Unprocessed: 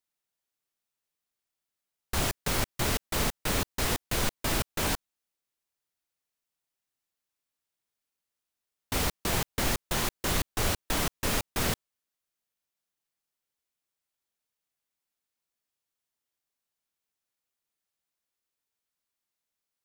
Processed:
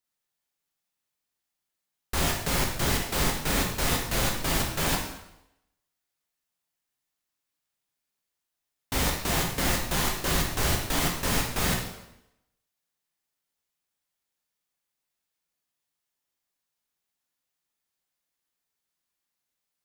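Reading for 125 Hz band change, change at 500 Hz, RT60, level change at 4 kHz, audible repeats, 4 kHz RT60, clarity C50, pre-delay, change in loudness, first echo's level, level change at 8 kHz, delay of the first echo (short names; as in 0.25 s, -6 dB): +3.5 dB, +2.0 dB, 0.85 s, +3.0 dB, none, 0.80 s, 4.5 dB, 5 ms, +3.0 dB, none, +3.0 dB, none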